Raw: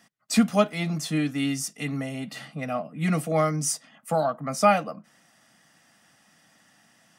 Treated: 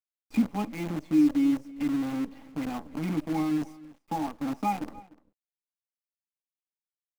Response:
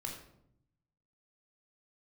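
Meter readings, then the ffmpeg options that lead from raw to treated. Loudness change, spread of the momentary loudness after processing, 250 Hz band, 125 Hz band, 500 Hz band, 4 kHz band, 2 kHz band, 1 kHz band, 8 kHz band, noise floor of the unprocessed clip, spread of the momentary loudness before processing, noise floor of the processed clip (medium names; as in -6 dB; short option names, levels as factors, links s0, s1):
-3.0 dB, 12 LU, +1.0 dB, -8.5 dB, -13.5 dB, -12.5 dB, -10.5 dB, -7.0 dB, -19.0 dB, -62 dBFS, 12 LU, under -85 dBFS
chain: -filter_complex "[0:a]highpass=40,agate=range=0.0224:threshold=0.00398:ratio=3:detection=peak,asplit=3[s0][s1][s2];[s0]bandpass=f=300:t=q:w=8,volume=1[s3];[s1]bandpass=f=870:t=q:w=8,volume=0.501[s4];[s2]bandpass=f=2240:t=q:w=8,volume=0.355[s5];[s3][s4][s5]amix=inputs=3:normalize=0,equalizer=f=77:w=0.33:g=2,asplit=2[s6][s7];[s7]acompressor=threshold=0.0112:ratio=6,volume=0.891[s8];[s6][s8]amix=inputs=2:normalize=0,acrusher=bits=7:dc=4:mix=0:aa=0.000001,tiltshelf=f=1400:g=5,asplit=2[s9][s10];[s10]adelay=297.4,volume=0.1,highshelf=f=4000:g=-6.69[s11];[s9][s11]amix=inputs=2:normalize=0"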